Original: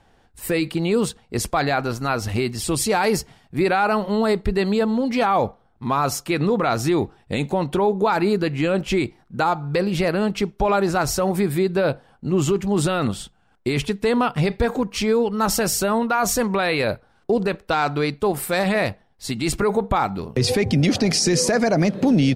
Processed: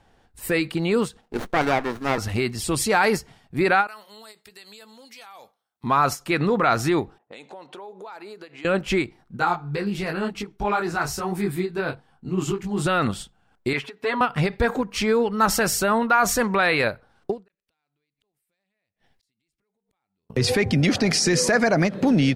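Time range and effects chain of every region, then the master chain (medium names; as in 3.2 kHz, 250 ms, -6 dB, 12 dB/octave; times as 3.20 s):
1.21–2.18 s: high-pass 200 Hz 24 dB/octave + sliding maximum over 17 samples
3.87–5.84 s: differentiator + compression 4:1, threshold -39 dBFS + doubling 14 ms -13 dB
7.18–8.65 s: high-pass 470 Hz + compression 4:1, threshold -37 dBFS + level-controlled noise filter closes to 670 Hz, open at -35 dBFS
9.37–12.86 s: peaking EQ 560 Hz -11 dB 0.2 oct + detune thickener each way 33 cents
13.73–14.21 s: high-pass 800 Hz 6 dB/octave + peaking EQ 10 kHz -14 dB 2 oct + comb 7.3 ms, depth 90%
17.48–20.30 s: resonant high shelf 1.6 kHz +6.5 dB, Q 1.5 + compression 16:1, threshold -32 dBFS + inverted gate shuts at -32 dBFS, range -41 dB
whole clip: dynamic bell 1.6 kHz, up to +7 dB, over -36 dBFS, Q 1; endings held to a fixed fall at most 290 dB/s; trim -2 dB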